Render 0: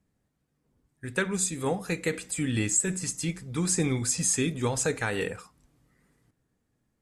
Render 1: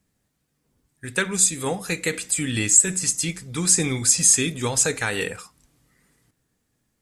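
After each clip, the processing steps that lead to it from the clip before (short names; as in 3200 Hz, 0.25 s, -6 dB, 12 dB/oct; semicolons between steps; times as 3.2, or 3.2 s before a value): high shelf 2000 Hz +9.5 dB; gain +1.5 dB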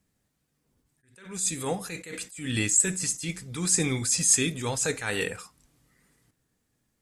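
attack slew limiter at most 100 dB/s; gain -2.5 dB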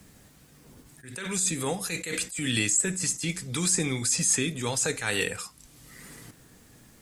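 three-band squash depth 70%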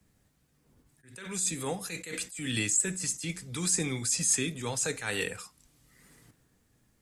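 three-band expander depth 40%; gain -4.5 dB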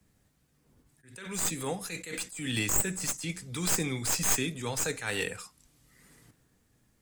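tracing distortion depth 0.058 ms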